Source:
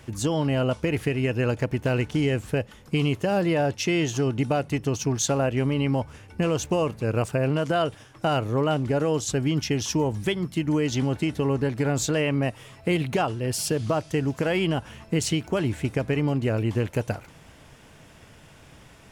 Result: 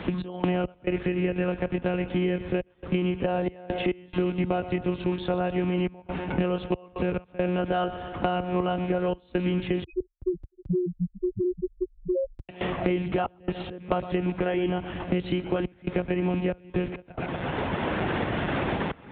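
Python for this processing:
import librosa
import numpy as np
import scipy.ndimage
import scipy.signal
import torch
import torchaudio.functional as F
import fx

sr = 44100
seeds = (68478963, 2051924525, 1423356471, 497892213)

y = fx.rattle_buzz(x, sr, strikes_db=-26.0, level_db=-29.0)
y = fx.recorder_agc(y, sr, target_db=-21.5, rise_db_per_s=19.0, max_gain_db=30)
y = fx.lpc_monotone(y, sr, seeds[0], pitch_hz=180.0, order=16)
y = fx.echo_feedback(y, sr, ms=121, feedback_pct=54, wet_db=-14.5)
y = fx.spec_topn(y, sr, count=2, at=(9.84, 12.49))
y = fx.step_gate(y, sr, bpm=69, pattern='x.x.xxxxxxxx.xx', floor_db=-24.0, edge_ms=4.5)
y = scipy.signal.sosfilt(scipy.signal.butter(2, 45.0, 'highpass', fs=sr, output='sos'), y)
y = fx.high_shelf(y, sr, hz=2000.0, db=-7.5)
y = fx.band_squash(y, sr, depth_pct=100)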